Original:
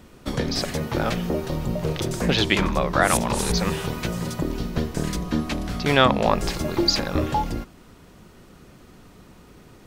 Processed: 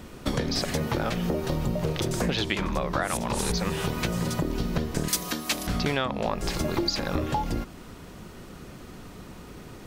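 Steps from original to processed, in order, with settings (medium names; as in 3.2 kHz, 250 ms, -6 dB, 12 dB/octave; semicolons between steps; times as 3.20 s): compression 12:1, threshold -28 dBFS, peak gain reduction 17.5 dB; 5.08–5.67 s: RIAA curve recording; trim +5 dB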